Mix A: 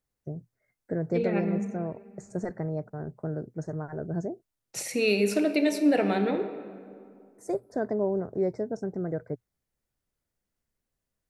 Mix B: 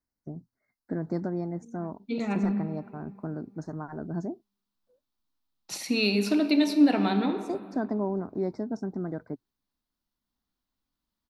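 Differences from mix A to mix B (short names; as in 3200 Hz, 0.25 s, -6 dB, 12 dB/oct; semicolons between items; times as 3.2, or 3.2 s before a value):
second voice: entry +0.95 s; master: add graphic EQ 125/250/500/1000/2000/4000/8000 Hz -9/+9/-11/+8/-6/+9/-8 dB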